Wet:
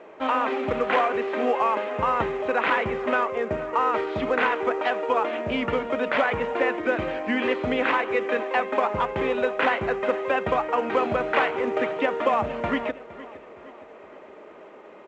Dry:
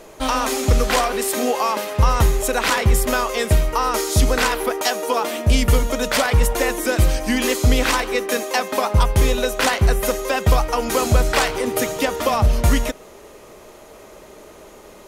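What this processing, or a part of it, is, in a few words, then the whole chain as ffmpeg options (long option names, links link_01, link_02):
telephone: -filter_complex "[0:a]lowpass=frequency=2800:width=0.5412,lowpass=frequency=2800:width=1.3066,asettb=1/sr,asplit=3[link_01][link_02][link_03];[link_01]atrim=end=3.254[link_04];[link_02]atrim=start=3.25:end=3.74,asetpts=PTS-STARTPTS,afade=type=in:duration=0.004:curve=qsin,afade=type=out:start_time=0.486:duration=0.004:curve=qsin,equalizer=frequency=6700:width_type=o:width=2.9:gain=-15[link_05];[link_03]atrim=start=3.736[link_06];[link_04][link_05]acrossfade=duration=0.004:curve1=hsin:curve2=qsin[link_07];[link_07][link_06]acrossfade=duration=0.004:curve1=qsin:curve2=hsin,highpass=260,lowpass=3500,aecho=1:1:464|928|1392|1856:0.126|0.0604|0.029|0.0139,volume=-2dB" -ar 16000 -c:a pcm_mulaw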